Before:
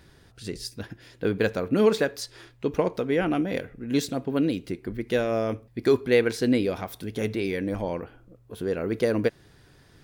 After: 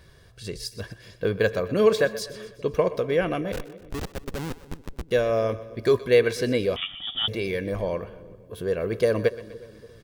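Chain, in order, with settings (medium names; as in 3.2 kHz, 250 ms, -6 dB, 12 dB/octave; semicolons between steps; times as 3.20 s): comb 1.8 ms, depth 56%; 3.52–5.11 s: Schmitt trigger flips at -24 dBFS; two-band feedback delay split 460 Hz, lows 289 ms, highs 124 ms, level -16 dB; 6.76–7.28 s: frequency inversion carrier 3.5 kHz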